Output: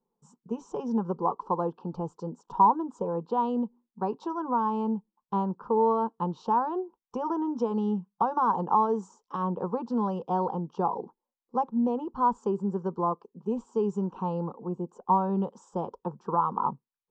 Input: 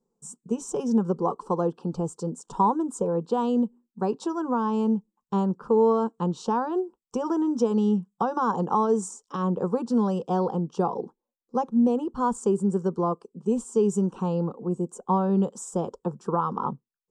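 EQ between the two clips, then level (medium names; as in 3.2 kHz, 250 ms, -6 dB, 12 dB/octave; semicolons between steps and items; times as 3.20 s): low-pass 6.9 kHz 24 dB/octave; distance through air 130 m; peaking EQ 930 Hz +9.5 dB 0.64 oct; -5.5 dB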